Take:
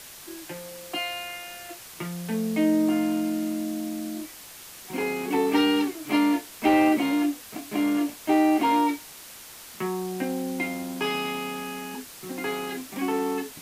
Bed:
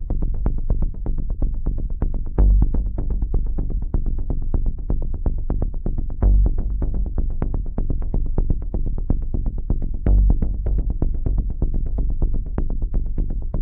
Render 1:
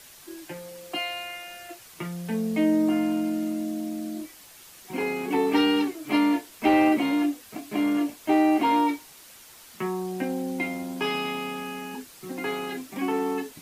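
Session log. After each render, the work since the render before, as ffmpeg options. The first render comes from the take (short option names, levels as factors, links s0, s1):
-af "afftdn=nr=6:nf=-45"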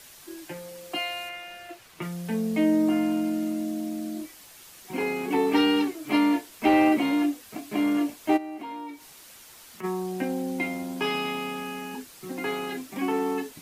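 -filter_complex "[0:a]asettb=1/sr,asplit=3[s0][s1][s2];[s0]atrim=end=1.294[s3];[s1]atrim=start=1.29:end=2.02,asetpts=PTS-STARTPTS,afade=t=in:d=0.004:c=qsin,afade=t=out:st=0.726:d=0.004:c=qsin,acrossover=split=4200[s4][s5];[s5]acompressor=threshold=0.00178:ratio=4:attack=1:release=60[s6];[s4][s6]amix=inputs=2:normalize=0[s7];[s2]atrim=start=2.016[s8];[s3][s7]acrossfade=d=0.004:c1=hsin:c2=qsin[s9];[s9][s8]acrossfade=d=0.004:c1=qsin:c2=hsin,asplit=3[s10][s11][s12];[s10]afade=t=out:st=8.36:d=0.02[s13];[s11]acompressor=threshold=0.00794:ratio=2.5:attack=3.2:release=140:knee=1:detection=peak,afade=t=in:st=8.36:d=0.02,afade=t=out:st=9.83:d=0.02[s14];[s12]afade=t=in:st=9.83:d=0.02[s15];[s13][s14][s15]amix=inputs=3:normalize=0"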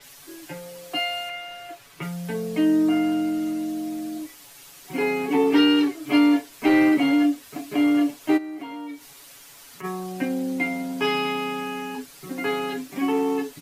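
-af "aecho=1:1:7.1:0.84,adynamicequalizer=threshold=0.00501:dfrequency=7300:dqfactor=0.7:tfrequency=7300:tqfactor=0.7:attack=5:release=100:ratio=0.375:range=2:mode=cutabove:tftype=highshelf"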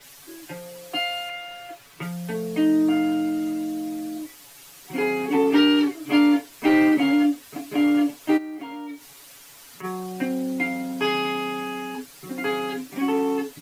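-af "acrusher=bits=9:mix=0:aa=0.000001"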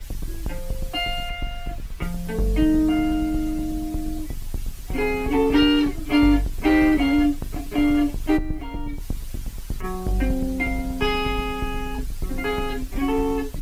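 -filter_complex "[1:a]volume=0.398[s0];[0:a][s0]amix=inputs=2:normalize=0"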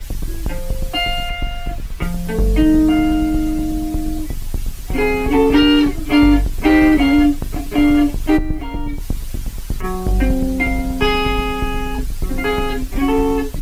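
-af "volume=2.11,alimiter=limit=0.708:level=0:latency=1"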